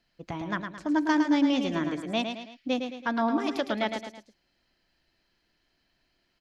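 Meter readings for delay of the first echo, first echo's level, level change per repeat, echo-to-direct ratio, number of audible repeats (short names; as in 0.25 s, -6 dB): 0.109 s, -6.5 dB, -7.0 dB, -5.5 dB, 3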